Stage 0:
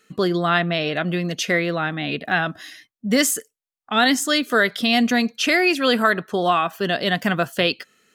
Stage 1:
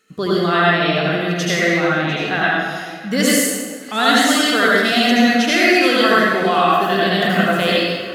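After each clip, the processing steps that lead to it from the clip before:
delay that swaps between a low-pass and a high-pass 349 ms, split 1,000 Hz, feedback 55%, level −13 dB
convolution reverb RT60 1.3 s, pre-delay 69 ms, DRR −6.5 dB
level −2.5 dB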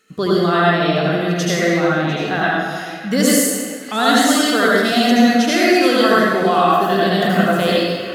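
dynamic equaliser 2,400 Hz, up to −7 dB, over −31 dBFS, Q 1
level +2 dB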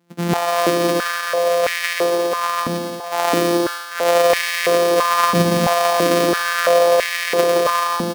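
samples sorted by size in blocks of 256 samples
bouncing-ball delay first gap 170 ms, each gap 0.65×, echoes 5
high-pass on a step sequencer 3 Hz 220–2,000 Hz
level −5 dB

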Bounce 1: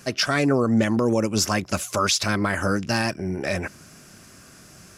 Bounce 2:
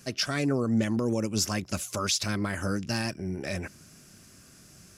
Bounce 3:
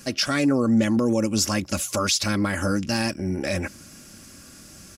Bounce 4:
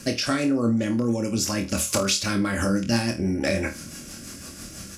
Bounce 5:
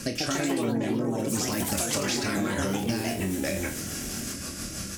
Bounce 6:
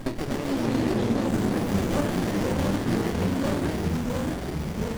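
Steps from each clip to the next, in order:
parametric band 990 Hz −6.5 dB 2.7 octaves; level −4 dB
comb filter 3.6 ms, depth 42%; in parallel at +2.5 dB: brickwall limiter −23 dBFS, peak gain reduction 8 dB
downward compressor, threshold −27 dBFS, peak gain reduction 10.5 dB; rotating-speaker cabinet horn 6 Hz; on a send: flutter between parallel walls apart 4.4 metres, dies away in 0.26 s; on the sum: level +7.5 dB
downward compressor 5 to 1, threshold −32 dBFS, peak gain reduction 13.5 dB; delay with pitch and tempo change per echo 153 ms, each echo +3 semitones, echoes 3; level +4 dB
rippled gain that drifts along the octave scale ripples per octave 0.82, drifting +1.4 Hz, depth 13 dB; delay with pitch and tempo change per echo 241 ms, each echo −2 semitones, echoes 3; windowed peak hold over 33 samples

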